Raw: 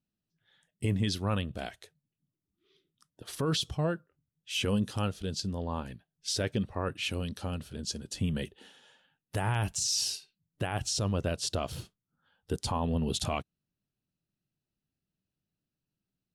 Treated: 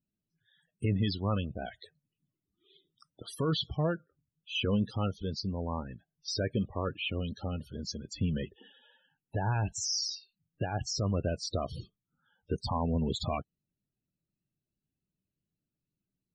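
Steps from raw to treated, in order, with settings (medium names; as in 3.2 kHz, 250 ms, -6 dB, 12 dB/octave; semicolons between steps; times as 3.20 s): loudest bins only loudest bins 32; 1.62–3.94 s: tape noise reduction on one side only encoder only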